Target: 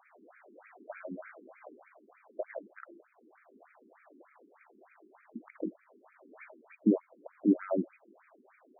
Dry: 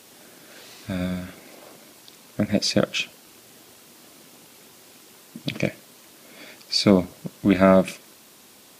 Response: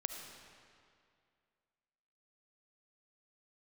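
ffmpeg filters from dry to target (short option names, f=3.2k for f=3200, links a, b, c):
-filter_complex "[0:a]acrossover=split=390[a][b];[b]acompressor=threshold=-38dB:ratio=4[c];[a][c]amix=inputs=2:normalize=0,equalizer=f=680:w=3.5:g=6,bandreject=f=172.1:t=h:w=4,bandreject=f=344.2:t=h:w=4,afftfilt=real='re*between(b*sr/1024,290*pow(1800/290,0.5+0.5*sin(2*PI*3.3*pts/sr))/1.41,290*pow(1800/290,0.5+0.5*sin(2*PI*3.3*pts/sr))*1.41)':imag='im*between(b*sr/1024,290*pow(1800/290,0.5+0.5*sin(2*PI*3.3*pts/sr))/1.41,290*pow(1800/290,0.5+0.5*sin(2*PI*3.3*pts/sr))*1.41)':win_size=1024:overlap=0.75,volume=-2dB"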